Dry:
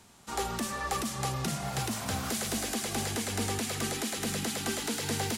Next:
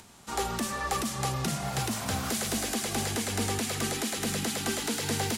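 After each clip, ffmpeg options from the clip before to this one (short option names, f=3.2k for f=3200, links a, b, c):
-af "acompressor=mode=upward:threshold=-51dB:ratio=2.5,volume=2dB"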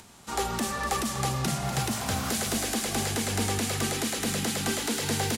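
-af "aecho=1:1:245:0.299,volume=1.5dB"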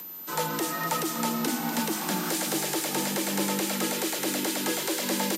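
-af "aeval=exprs='val(0)+0.0126*sin(2*PI*12000*n/s)':c=same,afreqshift=100"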